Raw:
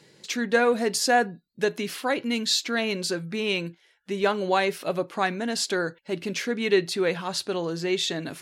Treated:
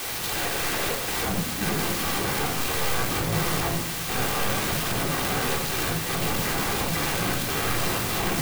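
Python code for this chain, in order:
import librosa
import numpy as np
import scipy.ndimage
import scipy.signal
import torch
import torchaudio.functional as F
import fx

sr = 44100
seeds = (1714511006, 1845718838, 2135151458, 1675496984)

y = fx.cycle_switch(x, sr, every=3, mode='muted')
y = fx.steep_highpass(y, sr, hz=fx.steps((0.0, 460.0), (1.24, 150.0)), slope=72)
y = 10.0 ** (-23.5 / 20.0) * np.tanh(y / 10.0 ** (-23.5 / 20.0))
y = fx.quant_dither(y, sr, seeds[0], bits=8, dither='triangular')
y = fx.fold_sine(y, sr, drive_db=18, ceiling_db=-22.0)
y = fx.room_shoebox(y, sr, seeds[1], volume_m3=2200.0, walls='furnished', distance_m=3.7)
y = fx.clock_jitter(y, sr, seeds[2], jitter_ms=0.037)
y = y * librosa.db_to_amplitude(-4.0)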